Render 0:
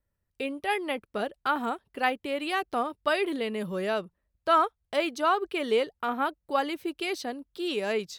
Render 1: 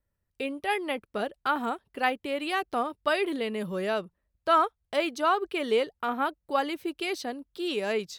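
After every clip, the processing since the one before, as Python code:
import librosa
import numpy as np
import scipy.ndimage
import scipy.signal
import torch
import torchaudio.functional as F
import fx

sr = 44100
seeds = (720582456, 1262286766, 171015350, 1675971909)

y = x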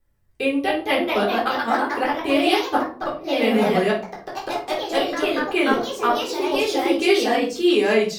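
y = fx.gate_flip(x, sr, shuts_db=-19.0, range_db=-40)
y = fx.echo_pitch(y, sr, ms=289, semitones=2, count=3, db_per_echo=-3.0)
y = fx.room_shoebox(y, sr, seeds[0], volume_m3=300.0, walls='furnished', distance_m=3.8)
y = F.gain(torch.from_numpy(y), 3.5).numpy()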